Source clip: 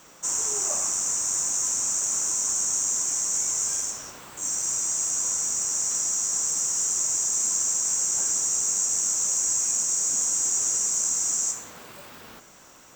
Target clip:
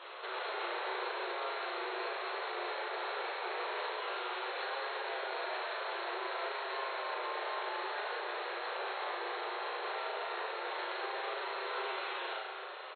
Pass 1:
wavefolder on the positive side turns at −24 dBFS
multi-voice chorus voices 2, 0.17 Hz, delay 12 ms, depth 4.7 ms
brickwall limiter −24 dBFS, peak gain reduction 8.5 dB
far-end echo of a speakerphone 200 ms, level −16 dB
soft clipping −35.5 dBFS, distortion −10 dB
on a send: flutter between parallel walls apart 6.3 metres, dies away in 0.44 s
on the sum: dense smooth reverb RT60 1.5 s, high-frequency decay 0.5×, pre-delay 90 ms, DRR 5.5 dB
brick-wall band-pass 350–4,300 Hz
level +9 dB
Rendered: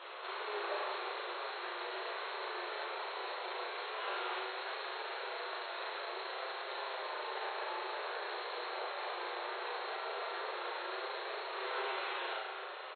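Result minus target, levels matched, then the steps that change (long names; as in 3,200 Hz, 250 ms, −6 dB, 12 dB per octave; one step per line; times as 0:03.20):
wavefolder on the positive side: distortion −13 dB
change: wavefolder on the positive side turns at −33 dBFS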